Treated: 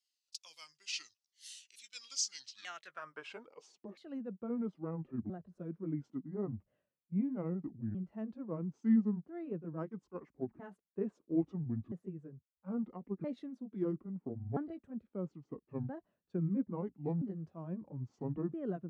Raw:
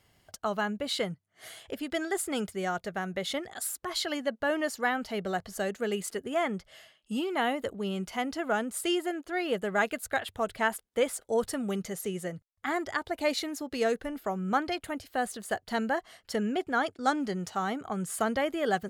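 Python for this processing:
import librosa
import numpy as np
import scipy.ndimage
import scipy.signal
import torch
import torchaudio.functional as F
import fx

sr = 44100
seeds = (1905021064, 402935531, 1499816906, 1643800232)

y = fx.pitch_ramps(x, sr, semitones=-10.5, every_ms=1324)
y = fx.filter_sweep_bandpass(y, sr, from_hz=5100.0, to_hz=210.0, start_s=2.31, end_s=4.05, q=1.7)
y = fx.band_widen(y, sr, depth_pct=70)
y = y * librosa.db_to_amplitude(-1.5)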